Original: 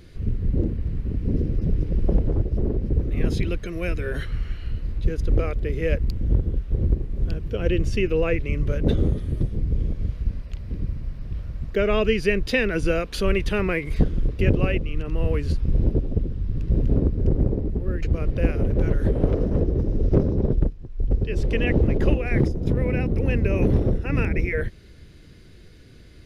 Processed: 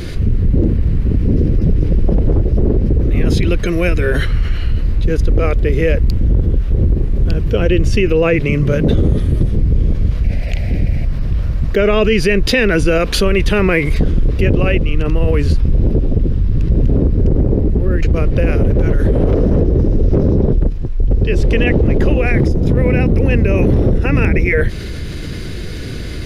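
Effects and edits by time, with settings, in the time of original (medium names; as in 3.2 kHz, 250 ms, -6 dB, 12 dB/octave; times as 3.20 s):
8.20–8.87 s: resonant low shelf 100 Hz -8.5 dB, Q 1.5
10.24–11.05 s: FFT filter 430 Hz 0 dB, 710 Hz +10 dB, 1.1 kHz -10 dB, 2.2 kHz +12 dB, 3.2 kHz +3 dB
whole clip: loudness maximiser +13.5 dB; level flattener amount 50%; trim -5 dB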